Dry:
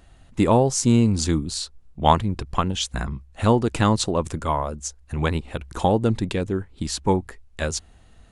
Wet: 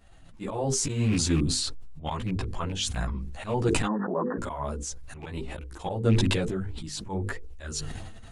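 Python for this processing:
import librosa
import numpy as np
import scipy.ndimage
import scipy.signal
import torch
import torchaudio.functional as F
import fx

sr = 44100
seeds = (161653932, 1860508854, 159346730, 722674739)

y = fx.rattle_buzz(x, sr, strikes_db=-21.0, level_db=-24.0)
y = fx.hum_notches(y, sr, base_hz=50, count=10)
y = fx.auto_swell(y, sr, attack_ms=195.0)
y = fx.brickwall_bandpass(y, sr, low_hz=170.0, high_hz=1900.0, at=(3.85, 4.37), fade=0.02)
y = fx.chorus_voices(y, sr, voices=4, hz=0.51, base_ms=15, depth_ms=4.7, mix_pct=60)
y = fx.sustainer(y, sr, db_per_s=27.0)
y = F.gain(torch.from_numpy(y), -1.5).numpy()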